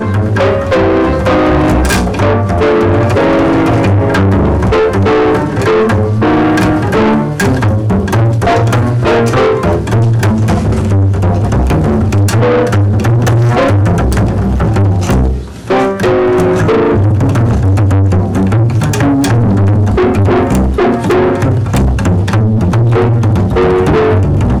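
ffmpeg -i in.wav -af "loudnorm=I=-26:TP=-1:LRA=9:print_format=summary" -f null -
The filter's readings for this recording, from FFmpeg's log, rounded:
Input Integrated:    -10.4 LUFS
Input True Peak:      -5.4 dBTP
Input LRA:             0.8 LU
Input Threshold:     -20.4 LUFS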